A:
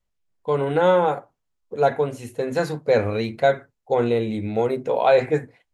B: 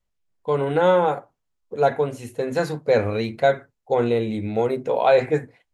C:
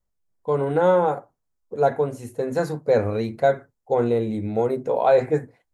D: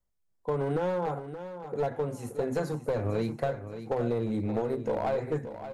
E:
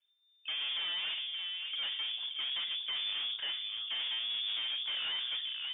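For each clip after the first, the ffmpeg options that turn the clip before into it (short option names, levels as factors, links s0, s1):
-af anull
-af "equalizer=f=2900:w=1:g=-10"
-filter_complex "[0:a]acrossover=split=150[s0][s1];[s1]acompressor=threshold=0.0708:ratio=10[s2];[s0][s2]amix=inputs=2:normalize=0,aeval=exprs='clip(val(0),-1,0.0631)':c=same,aecho=1:1:575|1150|1725|2300:0.282|0.101|0.0365|0.0131,volume=0.75"
-af "bandreject=f=146.2:t=h:w=4,bandreject=f=292.4:t=h:w=4,bandreject=f=438.6:t=h:w=4,bandreject=f=584.8:t=h:w=4,bandreject=f=731:t=h:w=4,bandreject=f=877.2:t=h:w=4,bandreject=f=1023.4:t=h:w=4,bandreject=f=1169.6:t=h:w=4,bandreject=f=1315.8:t=h:w=4,bandreject=f=1462:t=h:w=4,bandreject=f=1608.2:t=h:w=4,bandreject=f=1754.4:t=h:w=4,bandreject=f=1900.6:t=h:w=4,bandreject=f=2046.8:t=h:w=4,bandreject=f=2193:t=h:w=4,bandreject=f=2339.2:t=h:w=4,bandreject=f=2485.4:t=h:w=4,bandreject=f=2631.6:t=h:w=4,bandreject=f=2777.8:t=h:w=4,bandreject=f=2924:t=h:w=4,bandreject=f=3070.2:t=h:w=4,bandreject=f=3216.4:t=h:w=4,bandreject=f=3362.6:t=h:w=4,bandreject=f=3508.8:t=h:w=4,bandreject=f=3655:t=h:w=4,bandreject=f=3801.2:t=h:w=4,bandreject=f=3947.4:t=h:w=4,bandreject=f=4093.6:t=h:w=4,bandreject=f=4239.8:t=h:w=4,bandreject=f=4386:t=h:w=4,bandreject=f=4532.2:t=h:w=4,bandreject=f=4678.4:t=h:w=4,bandreject=f=4824.6:t=h:w=4,bandreject=f=4970.8:t=h:w=4,bandreject=f=5117:t=h:w=4,aeval=exprs='(tanh(79.4*val(0)+0.2)-tanh(0.2))/79.4':c=same,lowpass=f=3100:t=q:w=0.5098,lowpass=f=3100:t=q:w=0.6013,lowpass=f=3100:t=q:w=0.9,lowpass=f=3100:t=q:w=2.563,afreqshift=-3600,volume=1.5"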